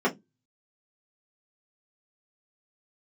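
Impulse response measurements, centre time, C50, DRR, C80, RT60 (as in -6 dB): 11 ms, 19.5 dB, -5.5 dB, 30.0 dB, 0.15 s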